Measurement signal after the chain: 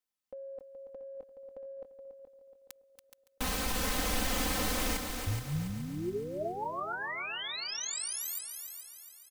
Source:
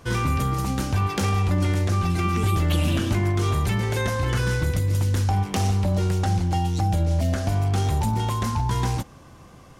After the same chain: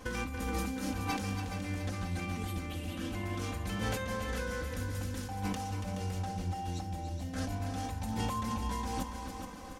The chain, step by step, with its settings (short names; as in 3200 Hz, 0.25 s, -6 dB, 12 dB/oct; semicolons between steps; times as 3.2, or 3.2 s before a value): comb 3.9 ms, depth 97%; negative-ratio compressor -28 dBFS, ratio -1; on a send: multi-head echo 0.141 s, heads second and third, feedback 48%, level -8.5 dB; on the sum: gain -9 dB